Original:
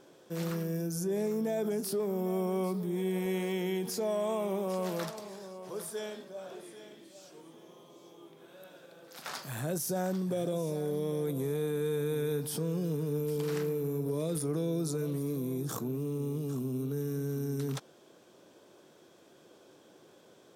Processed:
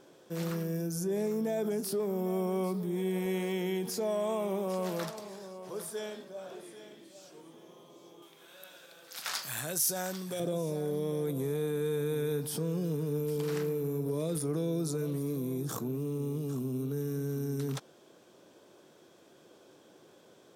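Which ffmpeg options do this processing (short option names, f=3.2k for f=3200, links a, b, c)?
-filter_complex "[0:a]asettb=1/sr,asplit=3[a][b][c];[a]atrim=end=8.224[d];[b]atrim=start=8.22:end=10.4,asetpts=PTS-STARTPTS,afade=t=in:d=0.004:c=qsin,afade=t=out:st=2.176:d=0.004:c=qsin,tiltshelf=f=970:g=-8[e];[c]atrim=start=10.396[f];[d][e]acrossfade=d=0.004:c1=hsin:c2=qsin[g];[g][f]acrossfade=d=0.004:c1=qsin:c2=hsin"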